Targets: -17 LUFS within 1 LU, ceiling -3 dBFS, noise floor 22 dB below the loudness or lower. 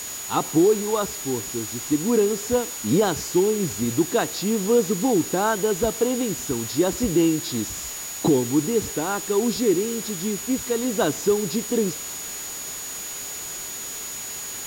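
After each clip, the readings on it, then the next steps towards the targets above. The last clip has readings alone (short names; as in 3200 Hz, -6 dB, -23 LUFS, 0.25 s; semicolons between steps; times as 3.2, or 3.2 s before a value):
steady tone 6800 Hz; tone level -33 dBFS; noise floor -33 dBFS; noise floor target -46 dBFS; loudness -23.5 LUFS; peak -9.0 dBFS; loudness target -17.0 LUFS
-> notch 6800 Hz, Q 30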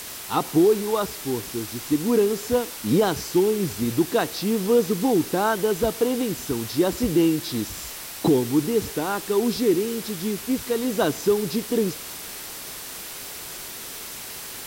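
steady tone none; noise floor -37 dBFS; noise floor target -46 dBFS
-> noise print and reduce 9 dB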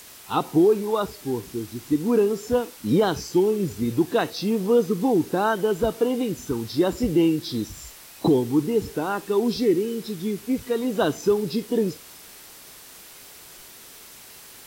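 noise floor -45 dBFS; noise floor target -46 dBFS
-> noise print and reduce 6 dB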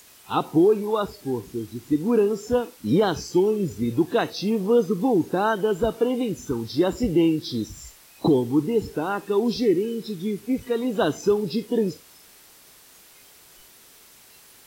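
noise floor -51 dBFS; loudness -23.5 LUFS; peak -10.0 dBFS; loudness target -17.0 LUFS
-> gain +6.5 dB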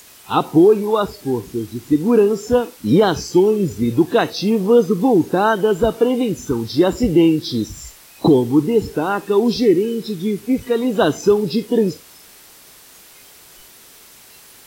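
loudness -17.0 LUFS; peak -3.5 dBFS; noise floor -45 dBFS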